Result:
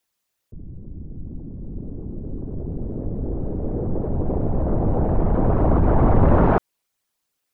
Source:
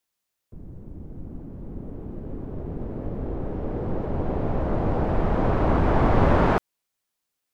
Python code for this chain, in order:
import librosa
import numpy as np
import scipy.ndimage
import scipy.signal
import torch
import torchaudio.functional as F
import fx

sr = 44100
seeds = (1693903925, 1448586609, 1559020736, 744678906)

y = fx.envelope_sharpen(x, sr, power=1.5)
y = y * 10.0 ** (4.0 / 20.0)